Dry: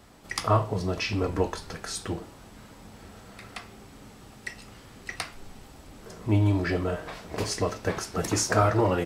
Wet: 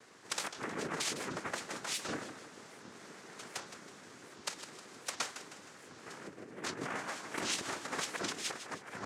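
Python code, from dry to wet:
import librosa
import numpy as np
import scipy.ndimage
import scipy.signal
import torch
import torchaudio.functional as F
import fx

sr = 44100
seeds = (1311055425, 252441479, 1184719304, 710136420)

y = fx.noise_vocoder(x, sr, seeds[0], bands=3)
y = fx.over_compress(y, sr, threshold_db=-31.0, ratio=-0.5)
y = fx.highpass(y, sr, hz=390.0, slope=6)
y = fx.echo_feedback(y, sr, ms=156, feedback_pct=46, wet_db=-11)
y = fx.record_warp(y, sr, rpm=78.0, depth_cents=250.0)
y = y * librosa.db_to_amplitude(-6.0)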